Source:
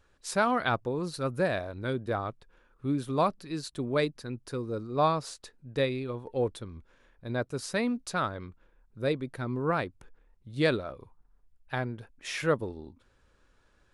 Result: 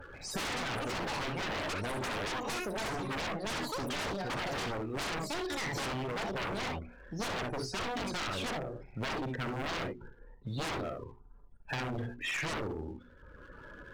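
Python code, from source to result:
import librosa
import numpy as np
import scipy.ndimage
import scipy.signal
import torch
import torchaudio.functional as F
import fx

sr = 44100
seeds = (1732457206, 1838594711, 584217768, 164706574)

p1 = fx.hum_notches(x, sr, base_hz=60, count=7)
p2 = np.clip(p1, -10.0 ** (-27.5 / 20.0), 10.0 ** (-27.5 / 20.0))
p3 = p1 + (p2 * 10.0 ** (-4.0 / 20.0))
p4 = fx.spec_topn(p3, sr, count=32)
p5 = fx.peak_eq(p4, sr, hz=7400.0, db=-5.0, octaves=1.7)
p6 = fx.tube_stage(p5, sr, drive_db=15.0, bias=0.75)
p7 = fx.echo_pitch(p6, sr, ms=137, semitones=7, count=2, db_per_echo=-3.0)
p8 = fx.rider(p7, sr, range_db=10, speed_s=0.5)
p9 = p8 + fx.room_early_taps(p8, sr, ms=(37, 62, 78), db=(-12.0, -8.0, -14.0), dry=0)
p10 = 10.0 ** (-32.0 / 20.0) * (np.abs((p9 / 10.0 ** (-32.0 / 20.0) + 3.0) % 4.0 - 2.0) - 1.0)
p11 = fx.leveller(p10, sr, passes=1)
y = fx.band_squash(p11, sr, depth_pct=70)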